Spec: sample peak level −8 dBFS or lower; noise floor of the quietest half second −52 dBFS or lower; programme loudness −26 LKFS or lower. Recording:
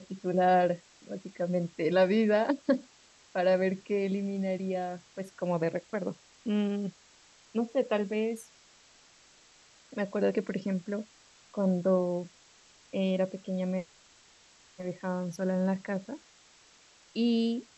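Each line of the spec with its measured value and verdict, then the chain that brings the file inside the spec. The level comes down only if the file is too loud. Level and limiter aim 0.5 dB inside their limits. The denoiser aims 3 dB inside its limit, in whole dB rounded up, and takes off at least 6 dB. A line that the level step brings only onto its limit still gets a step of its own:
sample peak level −14.0 dBFS: in spec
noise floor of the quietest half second −60 dBFS: in spec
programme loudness −30.5 LKFS: in spec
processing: no processing needed

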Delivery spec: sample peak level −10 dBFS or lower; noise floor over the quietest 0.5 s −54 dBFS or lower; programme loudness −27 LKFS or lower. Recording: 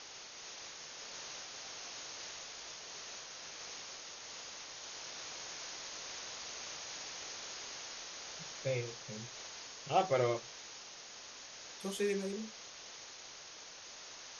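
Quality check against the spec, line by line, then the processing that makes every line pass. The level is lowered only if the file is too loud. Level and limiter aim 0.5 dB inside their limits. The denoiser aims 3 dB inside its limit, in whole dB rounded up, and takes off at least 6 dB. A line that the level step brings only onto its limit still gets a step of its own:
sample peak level −17.0 dBFS: in spec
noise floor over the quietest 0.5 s −52 dBFS: out of spec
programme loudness −42.0 LKFS: in spec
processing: broadband denoise 6 dB, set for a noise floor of −52 dBFS

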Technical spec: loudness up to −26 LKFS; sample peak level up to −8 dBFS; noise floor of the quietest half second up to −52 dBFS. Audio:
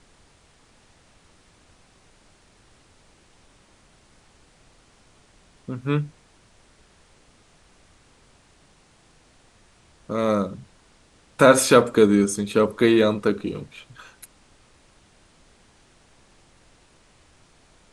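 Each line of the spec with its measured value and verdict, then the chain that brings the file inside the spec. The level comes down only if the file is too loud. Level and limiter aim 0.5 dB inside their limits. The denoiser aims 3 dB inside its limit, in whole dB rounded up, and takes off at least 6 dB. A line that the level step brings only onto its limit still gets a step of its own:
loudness −20.0 LKFS: out of spec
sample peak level −2.0 dBFS: out of spec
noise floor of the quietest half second −57 dBFS: in spec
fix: level −6.5 dB

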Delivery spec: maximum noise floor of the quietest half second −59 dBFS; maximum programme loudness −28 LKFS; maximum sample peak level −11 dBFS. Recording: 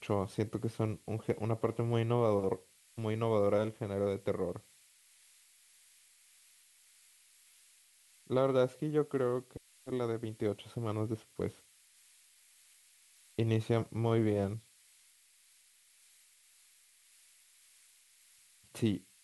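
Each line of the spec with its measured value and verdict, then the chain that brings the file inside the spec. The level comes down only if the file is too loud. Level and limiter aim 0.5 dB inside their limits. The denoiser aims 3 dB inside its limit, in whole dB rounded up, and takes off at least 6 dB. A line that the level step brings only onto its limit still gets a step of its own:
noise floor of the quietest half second −65 dBFS: in spec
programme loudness −34.5 LKFS: in spec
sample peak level −16.5 dBFS: in spec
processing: no processing needed

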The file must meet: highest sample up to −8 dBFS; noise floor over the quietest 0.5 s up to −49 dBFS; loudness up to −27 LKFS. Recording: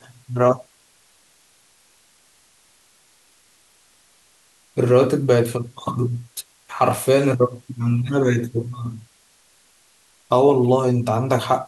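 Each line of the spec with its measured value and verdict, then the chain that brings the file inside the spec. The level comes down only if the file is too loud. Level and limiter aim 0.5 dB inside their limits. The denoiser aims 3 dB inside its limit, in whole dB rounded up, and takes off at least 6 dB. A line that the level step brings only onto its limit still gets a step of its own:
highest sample −5.0 dBFS: out of spec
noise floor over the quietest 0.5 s −57 dBFS: in spec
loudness −20.0 LKFS: out of spec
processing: level −7.5 dB

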